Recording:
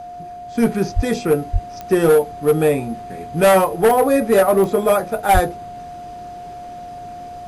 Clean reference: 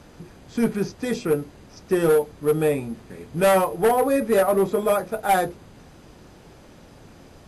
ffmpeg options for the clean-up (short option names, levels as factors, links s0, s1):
-filter_complex "[0:a]adeclick=t=4,bandreject=f=710:w=30,asplit=3[s0][s1][s2];[s0]afade=t=out:st=0.95:d=0.02[s3];[s1]highpass=f=140:w=0.5412,highpass=f=140:w=1.3066,afade=t=in:st=0.95:d=0.02,afade=t=out:st=1.07:d=0.02[s4];[s2]afade=t=in:st=1.07:d=0.02[s5];[s3][s4][s5]amix=inputs=3:normalize=0,asplit=3[s6][s7][s8];[s6]afade=t=out:st=1.52:d=0.02[s9];[s7]highpass=f=140:w=0.5412,highpass=f=140:w=1.3066,afade=t=in:st=1.52:d=0.02,afade=t=out:st=1.64:d=0.02[s10];[s8]afade=t=in:st=1.64:d=0.02[s11];[s9][s10][s11]amix=inputs=3:normalize=0,asplit=3[s12][s13][s14];[s12]afade=t=out:st=5.33:d=0.02[s15];[s13]highpass=f=140:w=0.5412,highpass=f=140:w=1.3066,afade=t=in:st=5.33:d=0.02,afade=t=out:st=5.45:d=0.02[s16];[s14]afade=t=in:st=5.45:d=0.02[s17];[s15][s16][s17]amix=inputs=3:normalize=0,asetnsamples=n=441:p=0,asendcmd='0.58 volume volume -5dB',volume=1"